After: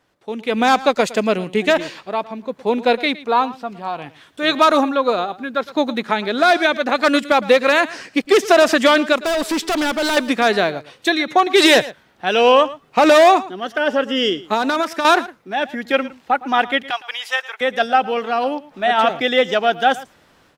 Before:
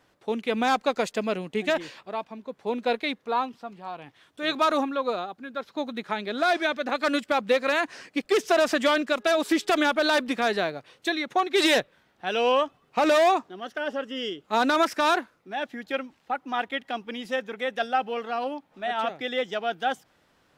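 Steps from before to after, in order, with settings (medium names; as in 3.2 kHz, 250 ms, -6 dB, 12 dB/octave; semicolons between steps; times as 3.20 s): 14.42–15.05 s: compression 6:1, threshold -29 dBFS, peak gain reduction 11 dB; 16.90–17.61 s: high-pass 810 Hz 24 dB/octave; level rider gain up to 15 dB; 9.23–10.17 s: hard clipper -16 dBFS, distortion -15 dB; delay 112 ms -18 dB; trim -1 dB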